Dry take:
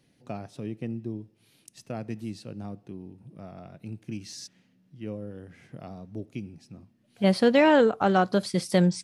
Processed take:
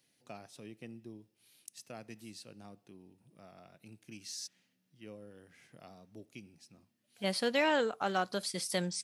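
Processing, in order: tilt +3 dB/oct; gain -8.5 dB

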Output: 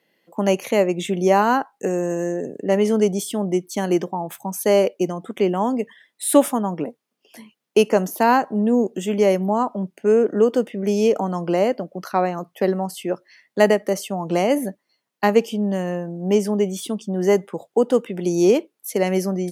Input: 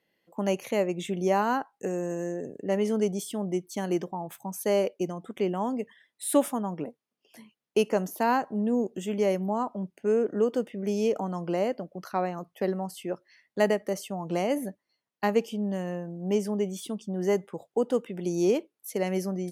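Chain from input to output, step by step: HPF 140 Hz; gain +8.5 dB

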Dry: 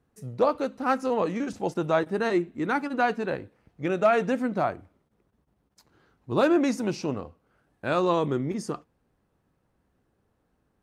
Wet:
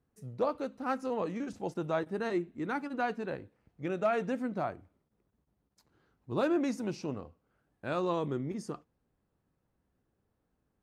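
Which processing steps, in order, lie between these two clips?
low shelf 370 Hz +3 dB; gain -9 dB

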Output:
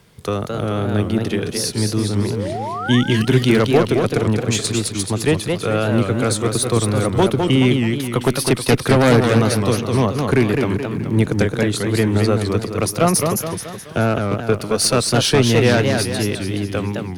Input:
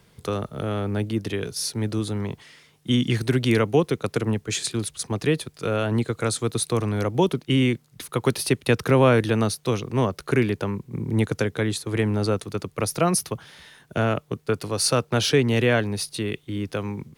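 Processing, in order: added harmonics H 4 -16 dB, 5 -6 dB, 7 -13 dB, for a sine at -4.5 dBFS; painted sound rise, 2.2–3.01, 310–2000 Hz -26 dBFS; warbling echo 0.213 s, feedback 47%, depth 195 cents, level -4.5 dB; gain -1 dB

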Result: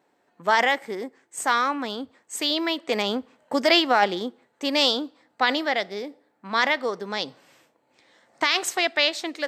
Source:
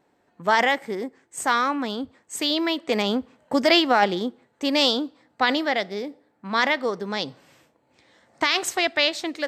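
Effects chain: HPF 310 Hz 6 dB/oct

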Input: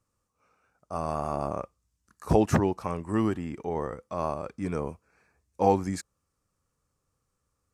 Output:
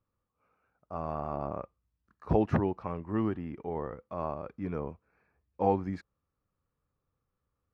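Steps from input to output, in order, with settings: air absorption 330 m; gain -3.5 dB

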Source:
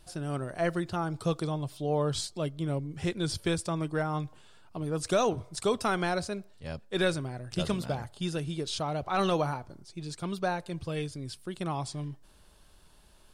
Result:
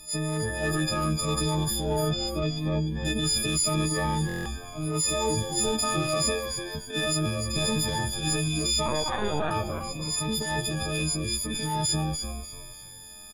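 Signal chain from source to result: frequency quantiser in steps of 6 st; 6.29–6.75 brick-wall FIR high-pass 300 Hz; in parallel at -7 dB: overloaded stage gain 29.5 dB; on the sum: transient shaper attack -11 dB, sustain +6 dB; 1.96–3.05 air absorption 240 m; limiter -21 dBFS, peak gain reduction 9 dB; 8.86–9.51 LPC vocoder at 8 kHz pitch kept; on a send: frequency-shifting echo 0.296 s, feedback 31%, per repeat -90 Hz, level -7 dB; on the sum: stuck buffer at 4.27, samples 1024, times 7; cascading phaser falling 0.8 Hz; gain +3 dB

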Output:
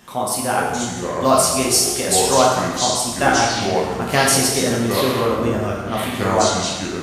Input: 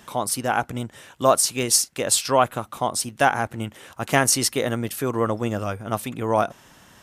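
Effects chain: echoes that change speed 0.354 s, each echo -6 st, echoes 3, each echo -6 dB; plate-style reverb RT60 1.3 s, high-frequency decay 0.85×, DRR -3 dB; gain -1 dB

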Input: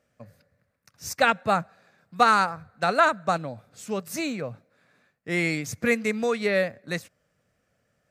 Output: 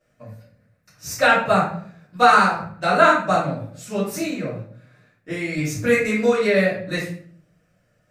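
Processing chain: 4.07–5.57 compressor 6:1, threshold -29 dBFS, peak gain reduction 8.5 dB; shoebox room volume 66 m³, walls mixed, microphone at 2.7 m; gain -6.5 dB

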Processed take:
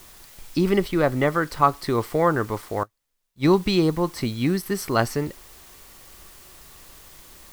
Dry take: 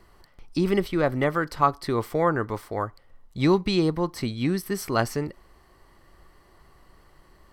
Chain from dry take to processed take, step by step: added noise white -51 dBFS; 2.83–3.48 upward expander 2.5:1, over -39 dBFS; gain +2.5 dB

